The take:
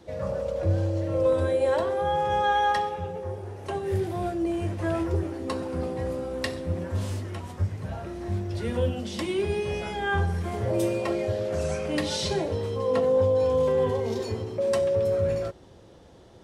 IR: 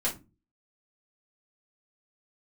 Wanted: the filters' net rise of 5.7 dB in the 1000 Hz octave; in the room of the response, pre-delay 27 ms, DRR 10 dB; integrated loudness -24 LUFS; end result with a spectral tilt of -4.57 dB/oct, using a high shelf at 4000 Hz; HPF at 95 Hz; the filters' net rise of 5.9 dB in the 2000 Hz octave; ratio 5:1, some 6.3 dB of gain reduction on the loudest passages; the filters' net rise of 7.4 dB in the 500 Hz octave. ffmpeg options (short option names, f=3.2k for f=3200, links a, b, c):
-filter_complex "[0:a]highpass=95,equalizer=f=500:t=o:g=7,equalizer=f=1k:t=o:g=3.5,equalizer=f=2k:t=o:g=5,highshelf=f=4k:g=4,acompressor=threshold=-19dB:ratio=5,asplit=2[a][b];[1:a]atrim=start_sample=2205,adelay=27[c];[b][c]afir=irnorm=-1:irlink=0,volume=-17dB[d];[a][d]amix=inputs=2:normalize=0,volume=-1dB"